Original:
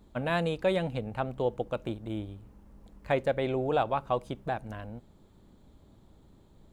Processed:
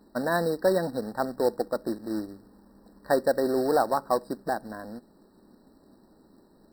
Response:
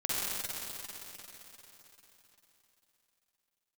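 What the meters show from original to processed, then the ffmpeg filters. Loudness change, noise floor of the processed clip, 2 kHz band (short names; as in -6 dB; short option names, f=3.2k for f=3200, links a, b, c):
+4.0 dB, -60 dBFS, +2.0 dB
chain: -af "lowshelf=f=160:t=q:w=1.5:g=-13.5,acrusher=bits=3:mode=log:mix=0:aa=0.000001,afftfilt=real='re*eq(mod(floor(b*sr/1024/1900),2),0)':imag='im*eq(mod(floor(b*sr/1024/1900),2),0)':win_size=1024:overlap=0.75,volume=3dB"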